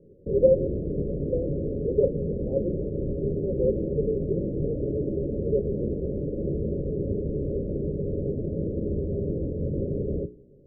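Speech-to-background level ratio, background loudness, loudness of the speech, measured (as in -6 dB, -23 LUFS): 1.0 dB, -30.0 LUFS, -29.0 LUFS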